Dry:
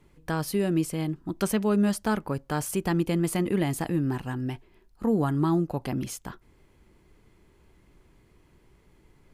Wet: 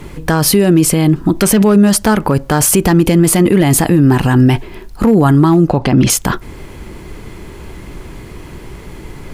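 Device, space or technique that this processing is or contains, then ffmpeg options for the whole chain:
loud club master: -filter_complex "[0:a]asettb=1/sr,asplit=3[link_01][link_02][link_03];[link_01]atrim=end=5.694[link_04];[link_02]atrim=start=5.69:end=6.1,asetpts=PTS-STARTPTS,afade=type=in:duration=0.004:curve=qsin,afade=type=out:start_time=0.406:duration=0.004:curve=qsin,lowpass=5400[link_05];[link_03]atrim=start=6.096[link_06];[link_04][link_05]acrossfade=duration=0.004:curve1=hsin:curve2=qsin[link_07];[link_07][link_06]acrossfade=duration=0.004:curve1=qsin:curve2=hsin,acompressor=threshold=-32dB:ratio=1.5,asoftclip=type=hard:threshold=-20.5dB,alimiter=level_in=29.5dB:limit=-1dB:release=50:level=0:latency=1,volume=-1dB"

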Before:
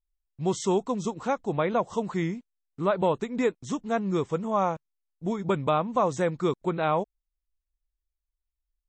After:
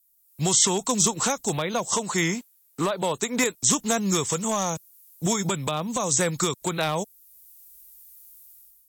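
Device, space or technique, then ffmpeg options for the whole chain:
FM broadcast chain: -filter_complex "[0:a]asettb=1/sr,asplit=3[link_01][link_02][link_03];[link_01]atrim=end=1.924[link_04];[link_02]atrim=start=1.92:end=3.44,asetpts=PTS-STARTPTS,afade=type=in:duration=0.004:curve=qsin,afade=type=out:start_time=1.516:duration=0.004:curve=qsin,equalizer=frequency=820:width=0.33:gain=9.5[link_05];[link_03]atrim=start=3.436[link_06];[link_04][link_05]acrossfade=duration=0.004:curve1=hsin:curve2=qsin[link_07];[link_07][link_06]acrossfade=duration=0.004:curve1=qsin:curve2=hsin,highpass=frequency=79:poles=1,dynaudnorm=framelen=120:gausssize=7:maxgain=15.5dB,acrossover=split=160|610|3500[link_08][link_09][link_10][link_11];[link_08]acompressor=threshold=-27dB:ratio=4[link_12];[link_09]acompressor=threshold=-26dB:ratio=4[link_13];[link_10]acompressor=threshold=-26dB:ratio=4[link_14];[link_11]acompressor=threshold=-41dB:ratio=4[link_15];[link_12][link_13][link_14][link_15]amix=inputs=4:normalize=0,aemphasis=mode=production:type=75fm,alimiter=limit=-15.5dB:level=0:latency=1:release=442,asoftclip=type=hard:threshold=-18.5dB,lowpass=frequency=15000:width=0.5412,lowpass=frequency=15000:width=1.3066,aemphasis=mode=production:type=75fm,volume=1.5dB"

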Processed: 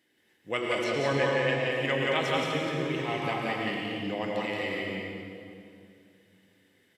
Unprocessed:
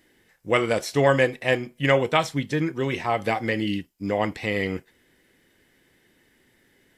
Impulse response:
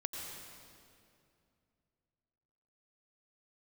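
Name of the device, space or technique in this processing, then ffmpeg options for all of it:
stadium PA: -filter_complex "[0:a]highpass=120,equalizer=frequency=3100:width_type=o:width=1.1:gain=5,aecho=1:1:174.9|227.4:0.794|0.316[link_01];[1:a]atrim=start_sample=2205[link_02];[link_01][link_02]afir=irnorm=-1:irlink=0,asettb=1/sr,asplit=3[link_03][link_04][link_05];[link_03]atrim=end=0.844[link_06];[link_04]atrim=start=0.84:end=1.72,asetpts=PTS-STARTPTS,afade=type=in:duration=0.004:curve=qsin,afade=type=out:start_time=0.876:duration=0.004:curve=qsin,lowpass=6800[link_07];[link_05]atrim=start=1.716[link_08];[link_06][link_07]acrossfade=duration=0.004:curve1=hsin:curve2=qsin[link_09];[link_09][link_08]acrossfade=duration=0.004:curve1=qsin:curve2=hsin,volume=-9dB"

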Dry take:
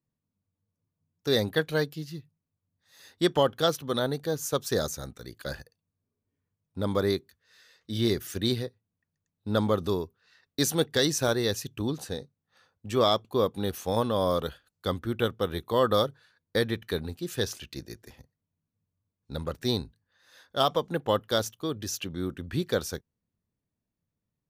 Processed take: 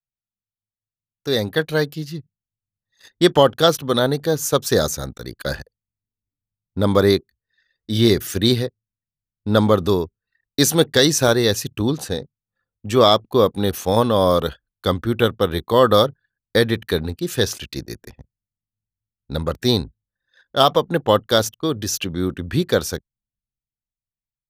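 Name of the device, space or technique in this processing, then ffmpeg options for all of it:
voice memo with heavy noise removal: -af "anlmdn=0.00398,dynaudnorm=framelen=250:gausssize=13:maxgain=14.5dB"

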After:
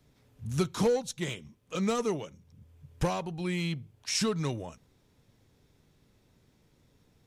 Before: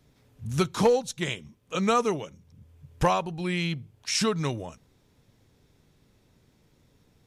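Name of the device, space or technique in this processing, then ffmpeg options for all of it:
one-band saturation: -filter_complex "[0:a]acrossover=split=520|4000[link_01][link_02][link_03];[link_02]asoftclip=type=tanh:threshold=-31.5dB[link_04];[link_01][link_04][link_03]amix=inputs=3:normalize=0,volume=-2.5dB"

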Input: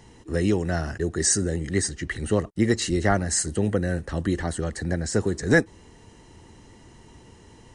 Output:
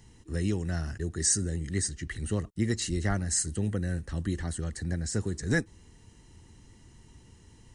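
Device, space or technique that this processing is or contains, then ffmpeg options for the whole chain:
smiley-face EQ: -af "lowshelf=frequency=180:gain=7,equalizer=frequency=600:width_type=o:width=1.7:gain=-6,highshelf=frequency=5700:gain=7,volume=-8dB"

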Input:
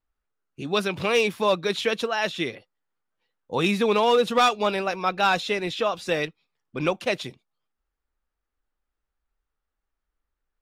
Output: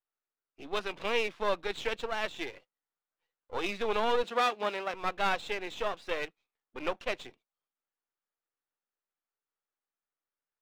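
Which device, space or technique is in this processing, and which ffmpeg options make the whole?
crystal radio: -filter_complex "[0:a]highpass=350,lowpass=3400,aeval=exprs='if(lt(val(0),0),0.251*val(0),val(0))':channel_layout=same,asettb=1/sr,asplit=3[link_01][link_02][link_03];[link_01]atrim=end=4.234[link_04];[link_02]atrim=start=4.23:end=4.94,asetpts=PTS-STARTPTS,afade=type=in:duration=0.004:curve=qsin,afade=type=out:start_time=0.706:duration=0.004:curve=qsin,highpass=frequency=180:width=0.5412,highpass=frequency=180:width=1.3066[link_05];[link_03]atrim=start=4.936[link_06];[link_04][link_05]acrossfade=duration=0.004:curve1=hsin:curve2=qsin[link_07];[link_07][link_06]acrossfade=duration=0.004:curve1=qsin:curve2=hsin,volume=-4.5dB"

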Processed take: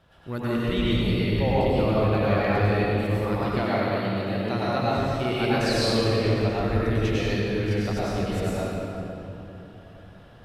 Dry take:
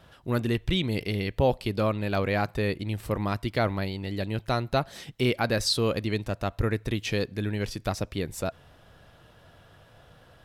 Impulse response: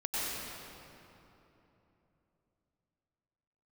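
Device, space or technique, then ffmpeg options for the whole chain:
swimming-pool hall: -filter_complex "[1:a]atrim=start_sample=2205[link_01];[0:a][link_01]afir=irnorm=-1:irlink=0,highshelf=frequency=5500:gain=-6,asettb=1/sr,asplit=3[link_02][link_03][link_04];[link_02]atrim=end=3.634[link_05];[link_03]atrim=start=3.63:end=4.98,asetpts=PTS-STARTPTS,afade=type=in:duration=0.004:curve=qsin,afade=type=out:start_time=1.346:duration=0.004:curve=qsin,highpass=130[link_06];[link_04]atrim=start=4.976[link_07];[link_05][link_06]acrossfade=duration=0.004:curve1=hsin:curve2=qsin[link_08];[link_08][link_07]acrossfade=duration=0.004:curve1=qsin:curve2=hsin,volume=-3dB"

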